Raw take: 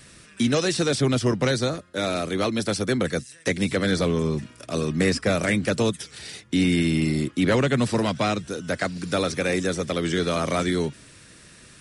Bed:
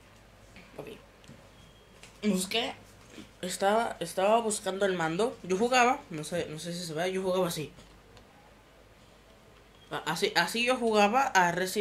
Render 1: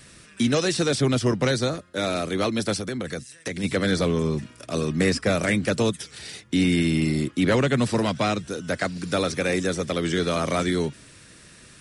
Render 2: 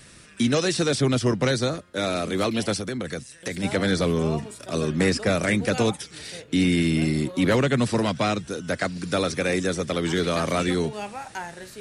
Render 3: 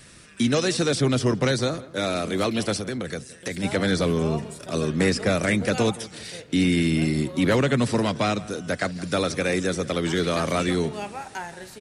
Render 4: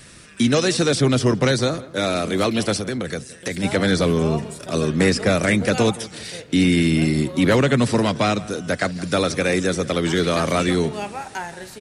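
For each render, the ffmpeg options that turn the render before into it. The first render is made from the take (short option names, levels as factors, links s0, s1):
-filter_complex "[0:a]asplit=3[s0][s1][s2];[s0]afade=t=out:st=2.77:d=0.02[s3];[s1]acompressor=threshold=0.0501:ratio=5:attack=3.2:release=140:knee=1:detection=peak,afade=t=in:st=2.77:d=0.02,afade=t=out:st=3.63:d=0.02[s4];[s2]afade=t=in:st=3.63:d=0.02[s5];[s3][s4][s5]amix=inputs=3:normalize=0"
-filter_complex "[1:a]volume=0.299[s0];[0:a][s0]amix=inputs=2:normalize=0"
-filter_complex "[0:a]asplit=2[s0][s1];[s1]adelay=168,lowpass=f=2300:p=1,volume=0.119,asplit=2[s2][s3];[s3]adelay=168,lowpass=f=2300:p=1,volume=0.49,asplit=2[s4][s5];[s5]adelay=168,lowpass=f=2300:p=1,volume=0.49,asplit=2[s6][s7];[s7]adelay=168,lowpass=f=2300:p=1,volume=0.49[s8];[s0][s2][s4][s6][s8]amix=inputs=5:normalize=0"
-af "volume=1.58"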